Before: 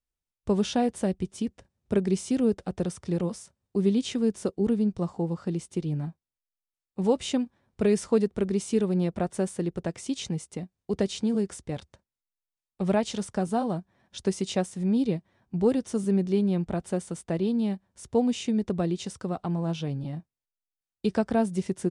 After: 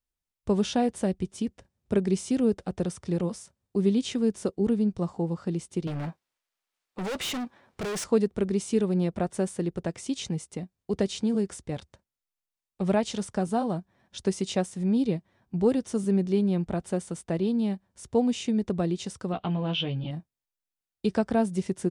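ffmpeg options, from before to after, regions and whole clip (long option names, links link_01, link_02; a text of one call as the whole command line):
ffmpeg -i in.wav -filter_complex "[0:a]asettb=1/sr,asplit=3[link_01][link_02][link_03];[link_01]atrim=end=5.874[link_04];[link_02]atrim=start=5.87:end=8.04,asetpts=PTS-STARTPTS,afade=type=in:duration=0.004:curve=qsin,afade=type=out:start_time=2.166:duration=0.004:curve=qsin,asplit=2[link_05][link_06];[link_06]highpass=frequency=720:poles=1,volume=21dB,asoftclip=type=tanh:threshold=-12dB[link_07];[link_05][link_07]amix=inputs=2:normalize=0,lowpass=frequency=3100:poles=1,volume=-6dB,asoftclip=type=hard:threshold=-30dB[link_08];[link_03]atrim=start=8.036[link_09];[link_04][link_08]acrossfade=duration=0.004:curve1=hsin:curve2=qsin[link_10];[link_10][link_09]acrossfade=duration=0.004:curve1=qsin:curve2=hsin,asettb=1/sr,asplit=3[link_11][link_12][link_13];[link_11]atrim=end=19.324[link_14];[link_12]atrim=start=19.32:end=20.11,asetpts=PTS-STARTPTS,afade=type=in:duration=0.004:curve=qsin,afade=type=out:start_time=0.786:duration=0.004:curve=qsin,lowpass=frequency=3100:width_type=q:width=5.3,asplit=2[link_15][link_16];[link_16]adelay=16,volume=-7dB[link_17];[link_15][link_17]amix=inputs=2:normalize=0,atrim=end_sample=34839[link_18];[link_13]atrim=start=20.106[link_19];[link_14][link_18]acrossfade=duration=0.004:curve1=hsin:curve2=qsin[link_20];[link_20][link_19]acrossfade=duration=0.004:curve1=qsin:curve2=hsin" out.wav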